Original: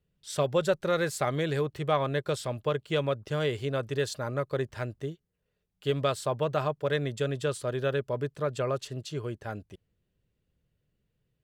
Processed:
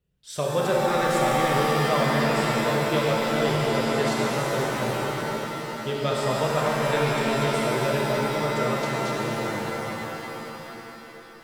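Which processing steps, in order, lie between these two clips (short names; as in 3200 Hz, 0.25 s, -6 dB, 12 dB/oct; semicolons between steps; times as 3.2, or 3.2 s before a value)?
shimmer reverb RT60 3.6 s, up +7 st, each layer -2 dB, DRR -3 dB; gain -1 dB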